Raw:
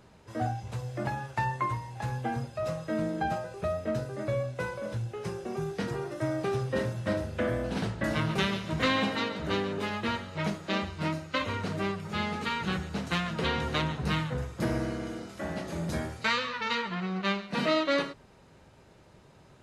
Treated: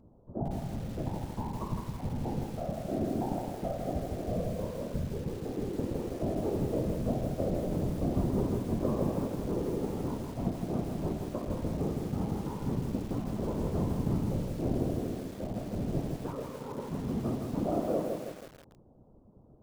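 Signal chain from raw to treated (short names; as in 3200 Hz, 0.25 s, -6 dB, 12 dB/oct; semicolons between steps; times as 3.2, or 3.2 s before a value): Gaussian blur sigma 12 samples; whisperiser; lo-fi delay 0.161 s, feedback 55%, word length 8-bit, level -4 dB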